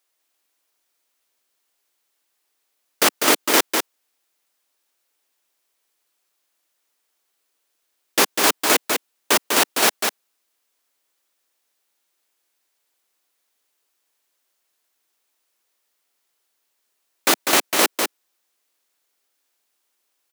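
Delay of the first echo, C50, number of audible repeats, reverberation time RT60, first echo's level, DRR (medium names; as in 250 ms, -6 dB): 198 ms, no reverb, 1, no reverb, -5.0 dB, no reverb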